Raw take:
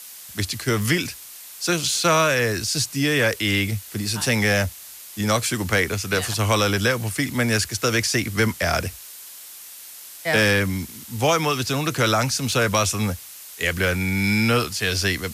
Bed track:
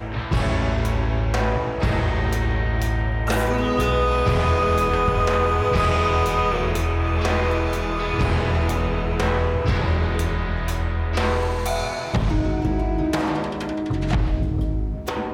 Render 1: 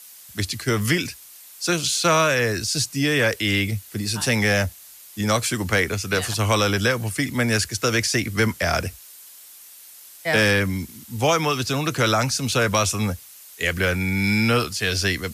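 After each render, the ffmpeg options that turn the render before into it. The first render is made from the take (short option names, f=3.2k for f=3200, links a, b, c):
-af "afftdn=nr=6:nf=-41"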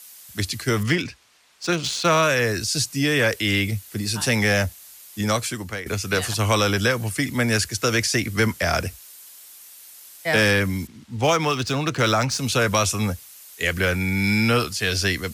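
-filter_complex "[0:a]asettb=1/sr,asplit=3[a][b][c];[a]atrim=end=0.834[d];[b]atrim=start=0.83:end=2.23,asetpts=PTS-STARTPTS,afade=t=in:d=0.004:c=qsin,afade=t=out:st=1.396:d=0.004:c=qsin,adynamicsmooth=sensitivity=1.5:basefreq=3.6k[e];[c]atrim=start=2.226[f];[d][e]acrossfade=d=0.004:c1=hsin:c2=qsin[g];[g][f]acrossfade=d=0.004:c1=qsin:c2=hsin,asettb=1/sr,asplit=3[h][i][j];[h]atrim=end=10.874[k];[i]atrim=start=10.87:end=12.38,asetpts=PTS-STARTPTS,afade=t=in:d=0.004:c=qsin,afade=t=out:st=1.506:d=0.004:c=qsin,adynamicsmooth=sensitivity=5:basefreq=3.7k[l];[j]atrim=start=12.376[m];[k][l]acrossfade=d=0.004:c1=hsin:c2=qsin[n];[n][m]acrossfade=d=0.004:c1=qsin:c2=hsin,asplit=2[o][p];[o]atrim=end=5.86,asetpts=PTS-STARTPTS,afade=t=out:st=5.21:d=0.65:silence=0.16788[q];[p]atrim=start=5.86,asetpts=PTS-STARTPTS,afade=t=in:d=0.004:c=hsin:silence=0.16788[r];[q][r]concat=n=2:v=0:a=1"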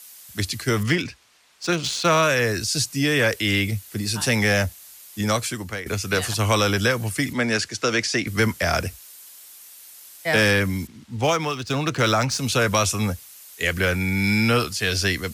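-filter_complex "[0:a]asettb=1/sr,asplit=3[a][b][c];[a]atrim=end=7.334[d];[b]atrim=start=7.33:end=8.27,asetpts=PTS-STARTPTS,afade=t=in:d=0.004:c=qsin,afade=t=out:st=0.936:d=0.004:c=qsin,highpass=170,lowpass=6.3k[e];[c]atrim=start=8.266[f];[d][e]acrossfade=d=0.004:c1=hsin:c2=qsin[g];[g][f]acrossfade=d=0.004:c1=qsin:c2=hsin,asplit=2[h][i];[h]atrim=end=11.7,asetpts=PTS-STARTPTS,afade=t=out:st=11.15:d=0.55:silence=0.421697[j];[i]atrim=start=11.7,asetpts=PTS-STARTPTS,afade=t=in:d=0.004:c=hsin:silence=0.421697[k];[j][k]concat=n=2:v=0:a=1"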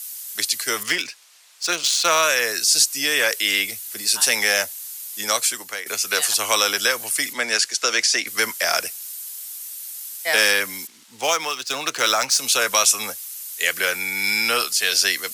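-af "highpass=550,highshelf=f=4.2k:g=12"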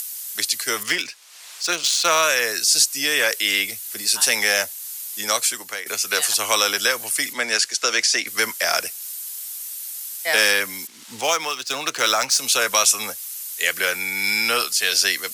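-af "acompressor=mode=upward:threshold=-27dB:ratio=2.5"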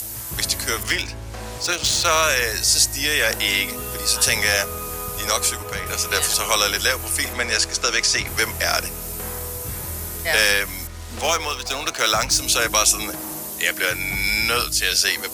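-filter_complex "[1:a]volume=-12.5dB[a];[0:a][a]amix=inputs=2:normalize=0"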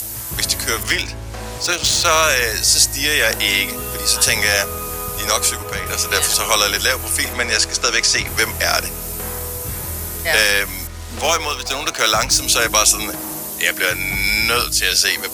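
-af "volume=3.5dB,alimiter=limit=-1dB:level=0:latency=1"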